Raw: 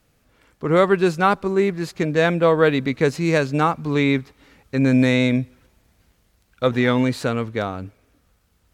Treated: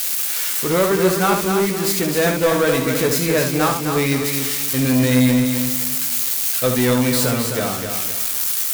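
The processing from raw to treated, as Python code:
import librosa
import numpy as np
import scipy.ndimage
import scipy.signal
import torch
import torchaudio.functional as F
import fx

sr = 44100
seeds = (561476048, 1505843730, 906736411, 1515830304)

y = x + 0.5 * 10.0 ** (-13.0 / 20.0) * np.diff(np.sign(x), prepend=np.sign(x[:1]))
y = fx.room_early_taps(y, sr, ms=(16, 72), db=(-6.5, -7.0))
y = fx.leveller(y, sr, passes=2)
y = fx.echo_crushed(y, sr, ms=259, feedback_pct=35, bits=6, wet_db=-6)
y = y * librosa.db_to_amplitude(-7.5)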